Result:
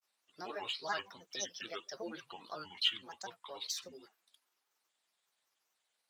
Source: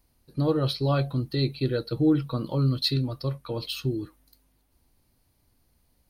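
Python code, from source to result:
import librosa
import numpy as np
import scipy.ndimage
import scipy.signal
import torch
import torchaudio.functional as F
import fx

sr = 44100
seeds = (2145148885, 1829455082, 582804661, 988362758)

y = scipy.signal.sosfilt(scipy.signal.butter(2, 9300.0, 'lowpass', fs=sr, output='sos'), x)
y = fx.granulator(y, sr, seeds[0], grain_ms=100.0, per_s=21.0, spray_ms=13.0, spread_st=7)
y = scipy.signal.sosfilt(scipy.signal.butter(2, 1000.0, 'highpass', fs=sr, output='sos'), y)
y = y * librosa.db_to_amplitude(-3.0)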